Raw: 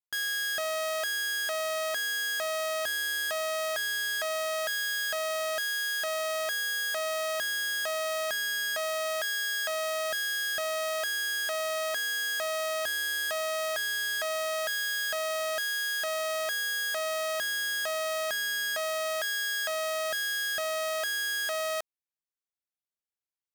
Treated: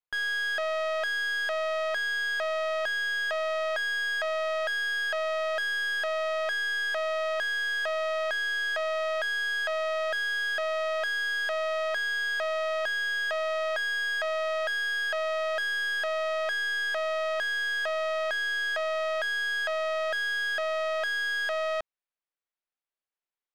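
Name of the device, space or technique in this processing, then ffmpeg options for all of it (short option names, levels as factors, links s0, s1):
crystal radio: -af "highpass=390,lowpass=3000,aeval=exprs='if(lt(val(0),0),0.708*val(0),val(0))':c=same,volume=1.78"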